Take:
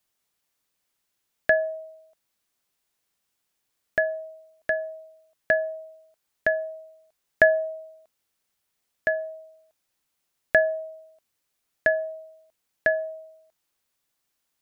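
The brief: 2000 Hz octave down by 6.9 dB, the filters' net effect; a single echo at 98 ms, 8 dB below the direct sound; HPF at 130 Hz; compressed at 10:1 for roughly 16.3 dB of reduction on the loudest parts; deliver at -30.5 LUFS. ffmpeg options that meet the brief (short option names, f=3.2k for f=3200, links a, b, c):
-af "highpass=130,equalizer=f=2k:t=o:g=-8.5,acompressor=threshold=-31dB:ratio=10,aecho=1:1:98:0.398,volume=9.5dB"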